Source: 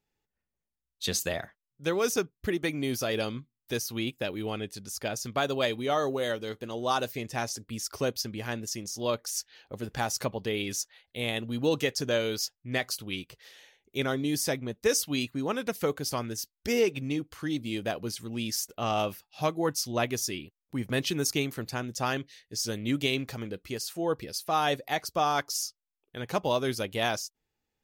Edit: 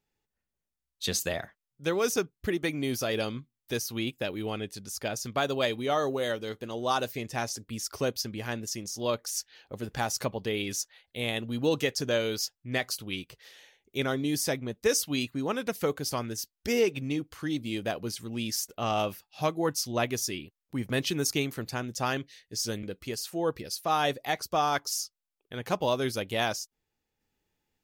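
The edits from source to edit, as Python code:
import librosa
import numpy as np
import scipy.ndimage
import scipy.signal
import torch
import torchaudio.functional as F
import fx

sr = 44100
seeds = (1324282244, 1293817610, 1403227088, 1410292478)

y = fx.edit(x, sr, fx.cut(start_s=22.83, length_s=0.63), tone=tone)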